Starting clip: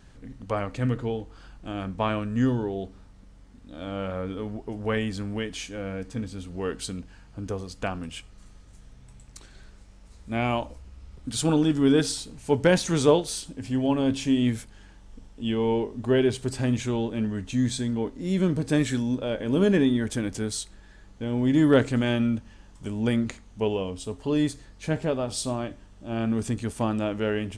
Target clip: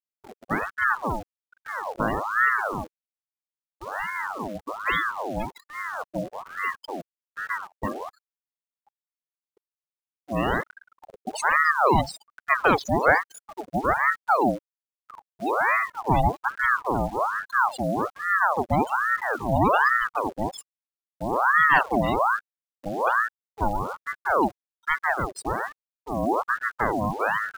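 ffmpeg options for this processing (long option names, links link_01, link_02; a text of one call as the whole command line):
ffmpeg -i in.wav -filter_complex "[0:a]asplit=3[link_01][link_02][link_03];[link_01]afade=type=out:start_time=13.68:duration=0.02[link_04];[link_02]agate=range=-28dB:threshold=-24dB:ratio=16:detection=peak,afade=type=in:start_time=13.68:duration=0.02,afade=type=out:start_time=14.37:duration=0.02[link_05];[link_03]afade=type=in:start_time=14.37:duration=0.02[link_06];[link_04][link_05][link_06]amix=inputs=3:normalize=0,afftfilt=real='re*gte(hypot(re,im),0.0891)':imag='im*gte(hypot(re,im),0.0891)':win_size=1024:overlap=0.75,afftdn=noise_reduction=30:noise_floor=-44,asplit=2[link_07][link_08];[link_08]alimiter=limit=-16dB:level=0:latency=1:release=152,volume=-2.5dB[link_09];[link_07][link_09]amix=inputs=2:normalize=0,acrusher=bits=8:dc=4:mix=0:aa=0.000001,aeval=exprs='val(0)*sin(2*PI*1000*n/s+1000*0.6/1.2*sin(2*PI*1.2*n/s))':channel_layout=same" out.wav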